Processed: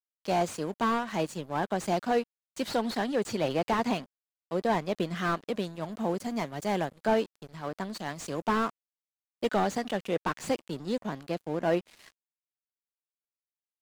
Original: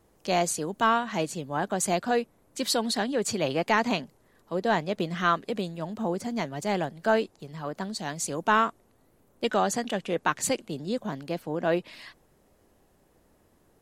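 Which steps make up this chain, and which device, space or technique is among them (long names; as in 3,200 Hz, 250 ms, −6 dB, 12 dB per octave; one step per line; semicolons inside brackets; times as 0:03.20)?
early transistor amplifier (dead-zone distortion −44.5 dBFS; slew-rate limiting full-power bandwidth 66 Hz)
0:05.82–0:06.94: high-shelf EQ 9,200 Hz +5 dB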